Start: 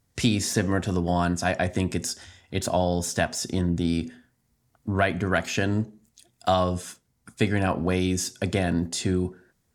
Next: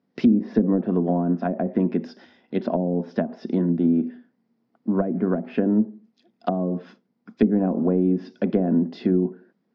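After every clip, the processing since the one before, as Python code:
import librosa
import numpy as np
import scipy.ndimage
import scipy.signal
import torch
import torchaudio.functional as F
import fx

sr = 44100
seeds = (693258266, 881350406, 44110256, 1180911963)

y = scipy.signal.sosfilt(scipy.signal.cheby1(4, 1.0, [200.0, 5200.0], 'bandpass', fs=sr, output='sos'), x)
y = fx.env_lowpass_down(y, sr, base_hz=420.0, full_db=-20.5)
y = fx.tilt_eq(y, sr, slope=-4.0)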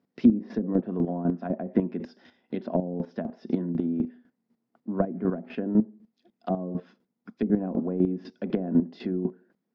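y = fx.chopper(x, sr, hz=4.0, depth_pct=65, duty_pct=20)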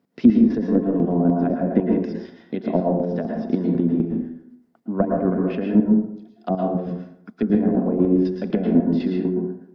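y = fx.rev_plate(x, sr, seeds[0], rt60_s=0.73, hf_ratio=0.55, predelay_ms=100, drr_db=0.5)
y = y * 10.0 ** (4.5 / 20.0)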